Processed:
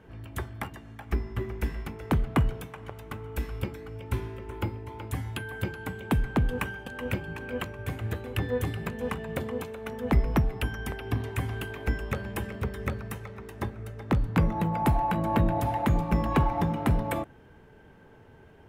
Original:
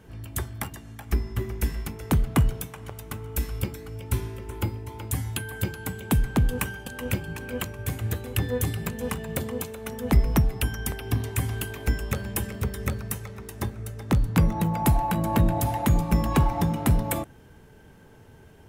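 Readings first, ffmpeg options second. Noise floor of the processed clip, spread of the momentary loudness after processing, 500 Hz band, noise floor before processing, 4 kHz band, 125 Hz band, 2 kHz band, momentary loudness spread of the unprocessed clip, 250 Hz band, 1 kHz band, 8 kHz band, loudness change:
-53 dBFS, 13 LU, -0.5 dB, -51 dBFS, -5.0 dB, -4.0 dB, -1.0 dB, 12 LU, -2.5 dB, 0.0 dB, -13.5 dB, -3.0 dB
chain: -af "bass=f=250:g=-4,treble=f=4k:g=-14"

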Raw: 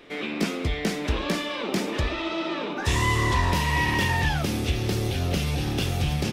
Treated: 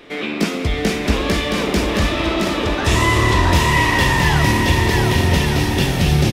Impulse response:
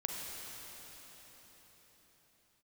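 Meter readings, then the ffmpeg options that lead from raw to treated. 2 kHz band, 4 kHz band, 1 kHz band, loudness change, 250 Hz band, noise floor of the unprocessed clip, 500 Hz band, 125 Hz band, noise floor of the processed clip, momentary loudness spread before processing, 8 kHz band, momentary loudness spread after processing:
+9.0 dB, +9.0 dB, +9.0 dB, +9.0 dB, +9.0 dB, -32 dBFS, +9.5 dB, +8.5 dB, -24 dBFS, 5 LU, +9.0 dB, 5 LU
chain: -filter_complex "[0:a]aecho=1:1:670|1172|1549|1832|2044:0.631|0.398|0.251|0.158|0.1,asplit=2[a][b];[1:a]atrim=start_sample=2205,asetrate=83790,aresample=44100[c];[b][c]afir=irnorm=-1:irlink=0,volume=-2dB[d];[a][d]amix=inputs=2:normalize=0,volume=4dB"

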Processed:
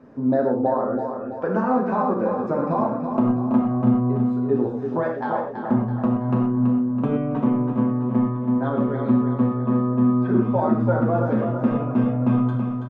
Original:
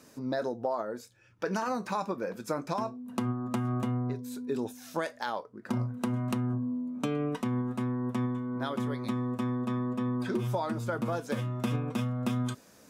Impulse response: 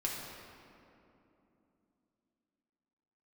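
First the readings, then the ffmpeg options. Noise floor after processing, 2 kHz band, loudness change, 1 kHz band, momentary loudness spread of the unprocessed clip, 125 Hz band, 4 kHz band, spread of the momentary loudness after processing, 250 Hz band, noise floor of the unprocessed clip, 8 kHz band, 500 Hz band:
-30 dBFS, +3.5 dB, +11.0 dB, +9.5 dB, 4 LU, +9.0 dB, n/a, 5 LU, +12.5 dB, -57 dBFS, under -20 dB, +11.0 dB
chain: -filter_complex "[0:a]lowpass=1k,aecho=1:1:329|658|987|1316|1645|1974:0.447|0.223|0.112|0.0558|0.0279|0.014[a];[1:a]atrim=start_sample=2205,atrim=end_sample=3969,asetrate=29988,aresample=44100[b];[a][b]afir=irnorm=-1:irlink=0,volume=7dB"

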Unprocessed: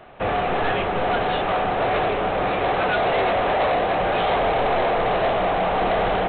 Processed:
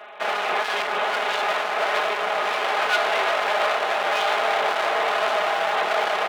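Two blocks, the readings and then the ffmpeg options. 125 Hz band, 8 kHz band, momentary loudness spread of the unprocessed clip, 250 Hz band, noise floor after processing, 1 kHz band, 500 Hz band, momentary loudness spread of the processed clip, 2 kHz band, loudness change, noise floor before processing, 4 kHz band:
under -20 dB, n/a, 2 LU, -13.5 dB, -27 dBFS, -1.5 dB, -4.0 dB, 2 LU, +3.0 dB, -1.0 dB, -24 dBFS, +4.0 dB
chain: -filter_complex "[0:a]aecho=1:1:4.8:0.88,asplit=2[a][b];[b]alimiter=limit=-17.5dB:level=0:latency=1,volume=-1.5dB[c];[a][c]amix=inputs=2:normalize=0,aeval=exprs='clip(val(0),-1,0.0251)':c=same,highpass=700"

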